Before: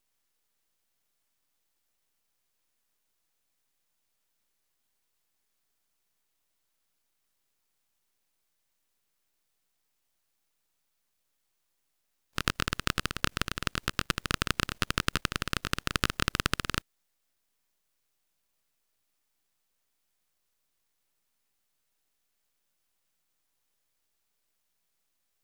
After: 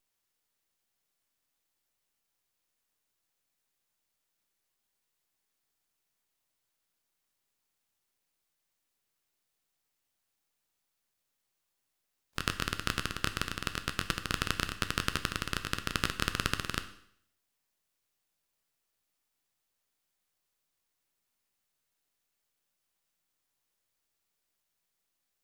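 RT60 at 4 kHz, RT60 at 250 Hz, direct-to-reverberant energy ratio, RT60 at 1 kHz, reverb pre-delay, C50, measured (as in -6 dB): 0.65 s, 0.65 s, 8.5 dB, 0.65 s, 10 ms, 13.0 dB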